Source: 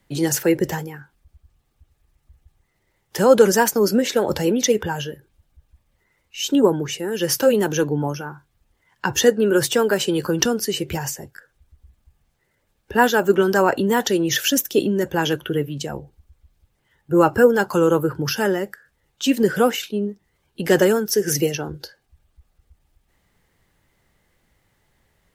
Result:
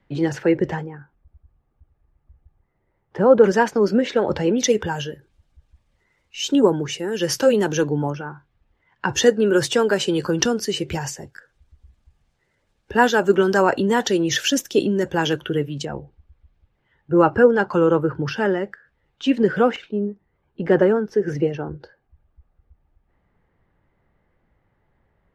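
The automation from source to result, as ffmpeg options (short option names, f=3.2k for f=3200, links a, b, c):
-af "asetnsamples=n=441:p=0,asendcmd='0.85 lowpass f 1300;3.44 lowpass f 3000;4.58 lowpass f 7200;8.1 lowpass f 2900;9.09 lowpass f 7000;15.85 lowpass f 2800;19.76 lowpass f 1500',lowpass=2.5k"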